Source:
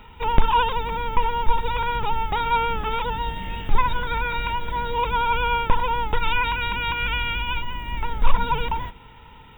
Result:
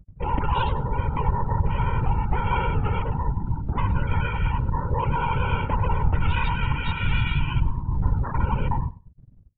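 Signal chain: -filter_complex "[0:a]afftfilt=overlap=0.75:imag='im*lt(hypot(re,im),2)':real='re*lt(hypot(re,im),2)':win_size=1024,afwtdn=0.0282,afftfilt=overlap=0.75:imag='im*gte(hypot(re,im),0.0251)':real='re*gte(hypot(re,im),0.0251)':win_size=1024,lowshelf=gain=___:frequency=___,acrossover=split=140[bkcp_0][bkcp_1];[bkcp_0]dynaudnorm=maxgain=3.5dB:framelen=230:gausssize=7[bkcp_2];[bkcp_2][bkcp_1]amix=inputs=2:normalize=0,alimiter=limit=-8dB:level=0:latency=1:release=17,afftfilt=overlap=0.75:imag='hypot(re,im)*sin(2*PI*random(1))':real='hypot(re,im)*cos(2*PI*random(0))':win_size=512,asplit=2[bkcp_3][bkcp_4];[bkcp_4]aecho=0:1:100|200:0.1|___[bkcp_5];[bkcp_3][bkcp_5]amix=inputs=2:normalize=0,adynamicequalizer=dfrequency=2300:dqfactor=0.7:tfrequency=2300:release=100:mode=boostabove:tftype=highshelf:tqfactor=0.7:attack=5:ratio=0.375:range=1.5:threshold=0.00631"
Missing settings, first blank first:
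10.5, 330, 0.017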